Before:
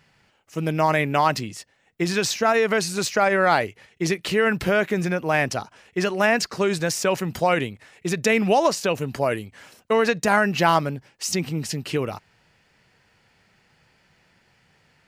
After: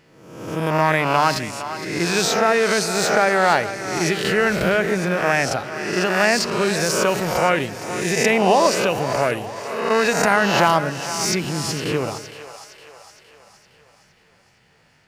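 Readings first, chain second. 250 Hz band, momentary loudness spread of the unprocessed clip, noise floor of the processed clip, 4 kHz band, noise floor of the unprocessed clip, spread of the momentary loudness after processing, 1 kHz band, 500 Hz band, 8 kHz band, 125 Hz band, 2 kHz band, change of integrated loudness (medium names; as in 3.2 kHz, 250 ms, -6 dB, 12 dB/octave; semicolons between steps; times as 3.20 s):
+2.0 dB, 12 LU, -57 dBFS, +5.0 dB, -63 dBFS, 10 LU, +3.5 dB, +3.0 dB, +5.0 dB, +1.5 dB, +4.0 dB, +3.0 dB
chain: reverse spectral sustain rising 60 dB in 0.94 s; two-band feedback delay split 500 Hz, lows 114 ms, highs 463 ms, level -12 dB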